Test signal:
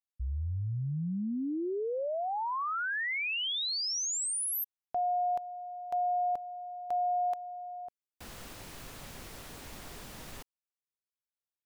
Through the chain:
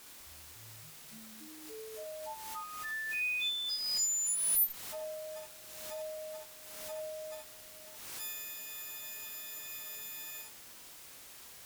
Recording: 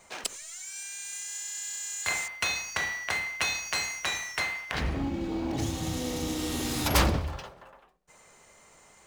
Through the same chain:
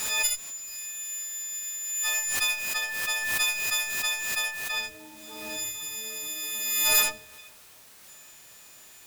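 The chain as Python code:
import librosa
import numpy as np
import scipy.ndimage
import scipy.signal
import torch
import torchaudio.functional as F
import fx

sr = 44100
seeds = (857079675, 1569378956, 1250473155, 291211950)

p1 = fx.freq_snap(x, sr, grid_st=6)
p2 = fx.dereverb_blind(p1, sr, rt60_s=1.2)
p3 = fx.highpass(p2, sr, hz=1300.0, slope=6)
p4 = fx.quant_dither(p3, sr, seeds[0], bits=6, dither='triangular')
p5 = p3 + F.gain(torch.from_numpy(p4), -11.0).numpy()
p6 = fx.tube_stage(p5, sr, drive_db=12.0, bias=0.6)
p7 = p6 + fx.room_early_taps(p6, sr, ms=(27, 62, 80), db=(-7.5, -4.0, -6.5), dry=0)
p8 = fx.pre_swell(p7, sr, db_per_s=35.0)
y = F.gain(torch.from_numpy(p8), -4.5).numpy()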